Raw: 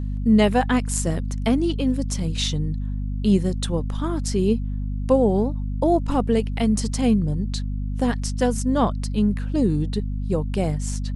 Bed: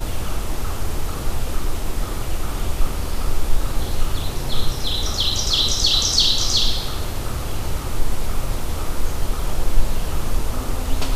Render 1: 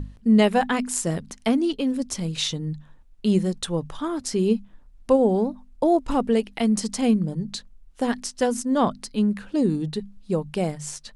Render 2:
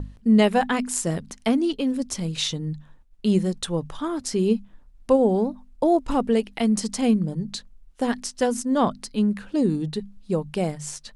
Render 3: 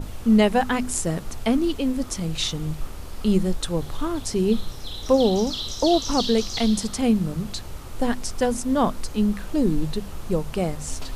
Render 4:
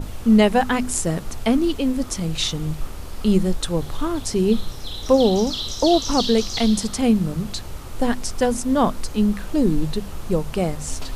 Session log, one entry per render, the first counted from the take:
mains-hum notches 50/100/150/200/250 Hz
downward expander −46 dBFS
mix in bed −12 dB
level +2.5 dB

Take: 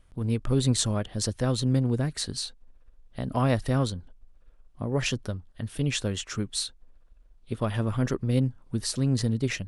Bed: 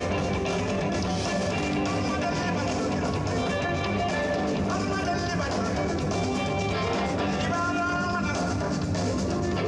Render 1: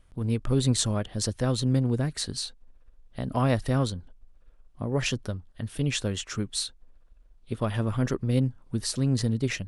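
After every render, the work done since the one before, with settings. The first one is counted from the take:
no processing that can be heard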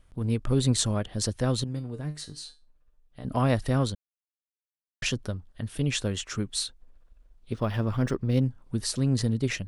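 0:01.64–0:03.25: tuned comb filter 150 Hz, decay 0.26 s, mix 80%
0:03.95–0:05.02: silence
0:07.52–0:08.42: linearly interpolated sample-rate reduction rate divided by 3×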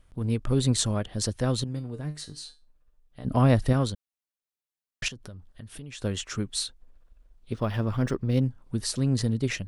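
0:03.26–0:03.73: low-shelf EQ 430 Hz +5.5 dB
0:05.08–0:06.02: downward compressor 5 to 1, threshold −39 dBFS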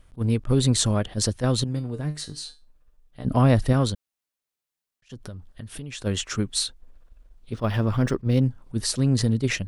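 in parallel at −2 dB: brickwall limiter −19 dBFS, peak gain reduction 10.5 dB
on the sum: level that may rise only so fast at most 410 dB per second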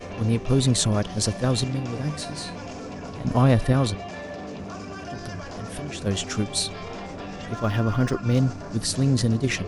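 mix in bed −9 dB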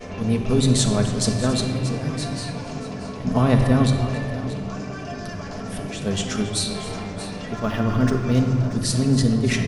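multi-tap delay 277/633 ms −16.5/−14 dB
rectangular room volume 3,000 cubic metres, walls mixed, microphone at 1.5 metres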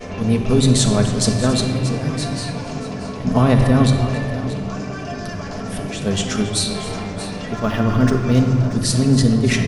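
level +4 dB
brickwall limiter −3 dBFS, peak gain reduction 2.5 dB

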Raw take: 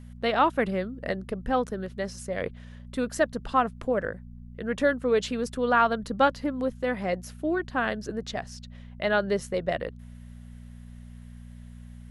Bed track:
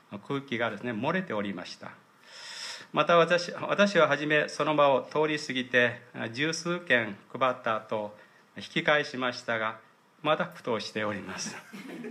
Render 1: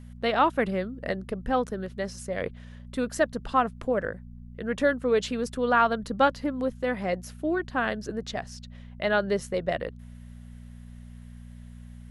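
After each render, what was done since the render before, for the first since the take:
no processing that can be heard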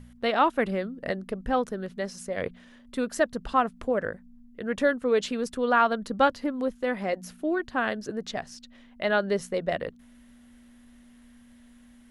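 hum removal 60 Hz, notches 3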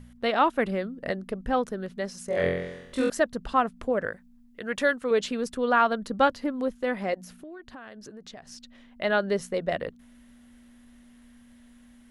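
0:02.26–0:03.10: flutter between parallel walls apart 3.9 metres, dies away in 0.91 s
0:04.06–0:05.11: tilt shelving filter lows −5 dB, about 790 Hz
0:07.14–0:08.50: downward compressor, threshold −41 dBFS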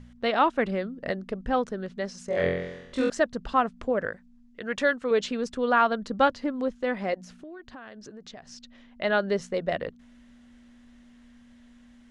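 low-pass filter 7,400 Hz 24 dB per octave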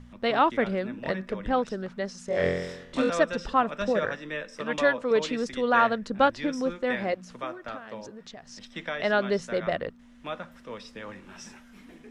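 mix in bed track −9.5 dB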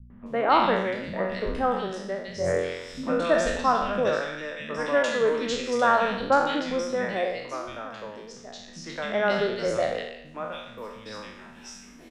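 peak hold with a decay on every bin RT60 0.78 s
three-band delay without the direct sound lows, mids, highs 100/260 ms, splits 220/2,000 Hz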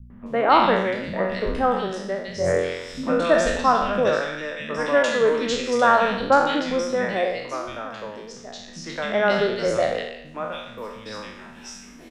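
level +4 dB

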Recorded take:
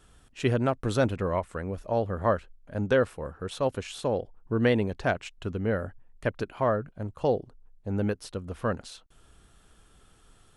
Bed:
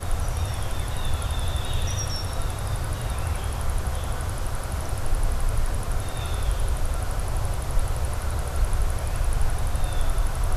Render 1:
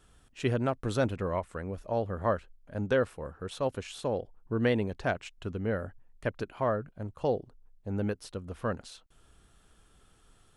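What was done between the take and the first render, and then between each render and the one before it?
level −3.5 dB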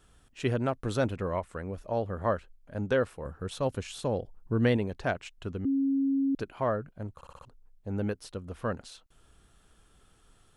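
0:03.25–0:04.77: bass and treble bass +5 dB, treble +3 dB
0:05.65–0:06.35: beep over 273 Hz −23.5 dBFS
0:07.15: stutter in place 0.06 s, 5 plays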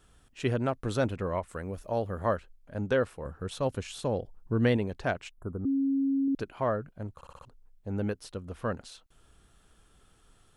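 0:01.48–0:02.36: high-shelf EQ 7,400 Hz +11.5 dB
0:05.31–0:06.28: elliptic band-stop filter 1,300–9,200 Hz, stop band 50 dB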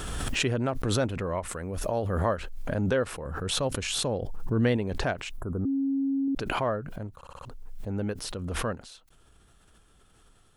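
background raised ahead of every attack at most 25 dB per second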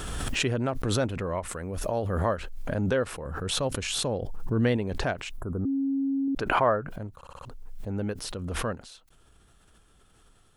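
0:06.40–0:06.91: drawn EQ curve 190 Hz 0 dB, 980 Hz +7 dB, 1,500 Hz +7 dB, 4,300 Hz −4 dB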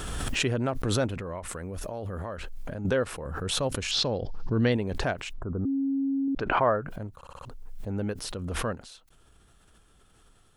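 0:01.14–0:02.85: downward compressor, threshold −31 dBFS
0:03.91–0:04.72: high shelf with overshoot 7,000 Hz −13.5 dB, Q 3
0:05.33–0:06.75: high-frequency loss of the air 150 metres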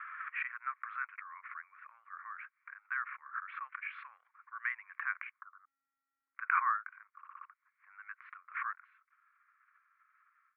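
noise gate with hold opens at −51 dBFS
Chebyshev band-pass filter 1,100–2,300 Hz, order 4

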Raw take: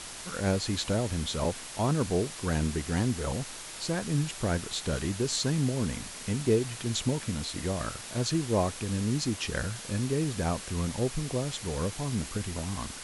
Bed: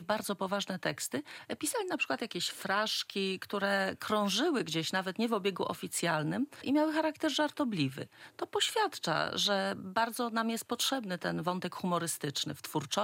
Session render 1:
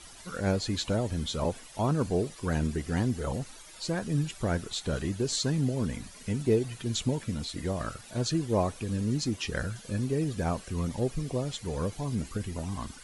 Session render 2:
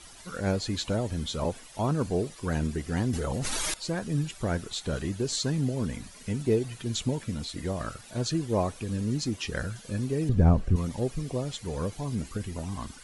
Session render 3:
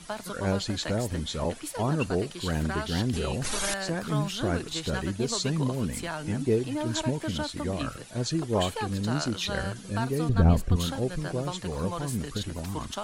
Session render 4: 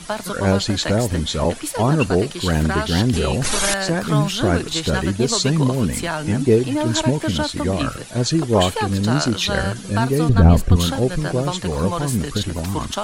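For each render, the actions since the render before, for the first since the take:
broadband denoise 13 dB, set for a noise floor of −42 dBFS
0:03.13–0:03.74: envelope flattener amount 100%; 0:10.29–0:10.76: spectral tilt −4 dB per octave
mix in bed −3.5 dB
level +10 dB; brickwall limiter −1 dBFS, peak gain reduction 3 dB

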